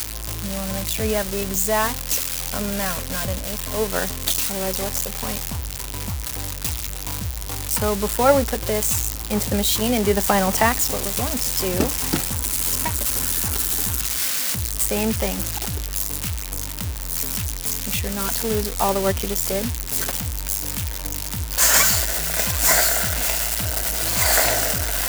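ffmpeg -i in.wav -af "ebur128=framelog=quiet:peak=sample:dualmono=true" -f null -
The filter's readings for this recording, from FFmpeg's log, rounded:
Integrated loudness:
  I:         -17.9 LUFS
  Threshold: -27.9 LUFS
Loudness range:
  LRA:         6.3 LU
  Threshold: -38.0 LUFS
  LRA low:   -21.0 LUFS
  LRA high:  -14.8 LUFS
Sample peak:
  Peak:       -3.6 dBFS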